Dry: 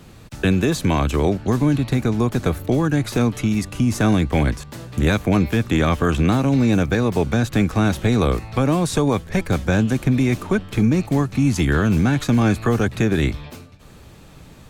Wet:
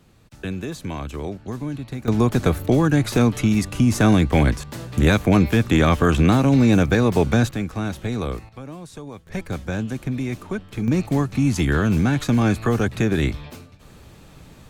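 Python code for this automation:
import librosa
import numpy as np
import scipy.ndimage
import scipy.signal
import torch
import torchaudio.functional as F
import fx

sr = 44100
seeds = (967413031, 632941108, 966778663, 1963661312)

y = fx.gain(x, sr, db=fx.steps((0.0, -11.0), (2.08, 1.5), (7.51, -8.0), (8.49, -18.0), (9.27, -8.0), (10.88, -1.5)))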